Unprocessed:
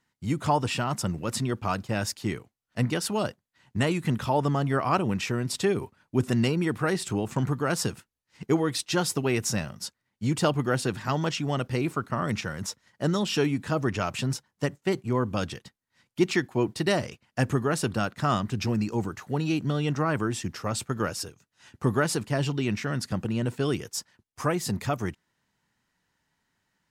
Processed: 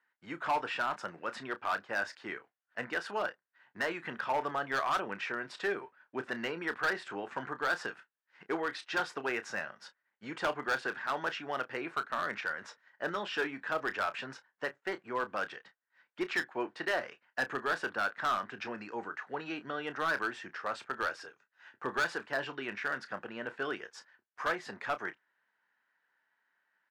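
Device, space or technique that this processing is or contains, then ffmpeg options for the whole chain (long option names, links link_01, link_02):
megaphone: -filter_complex "[0:a]highpass=540,lowpass=2500,equalizer=frequency=1600:width_type=o:width=0.45:gain=10,asoftclip=type=hard:threshold=-22dB,asplit=2[link_01][link_02];[link_02]adelay=30,volume=-12dB[link_03];[link_01][link_03]amix=inputs=2:normalize=0,volume=-3.5dB"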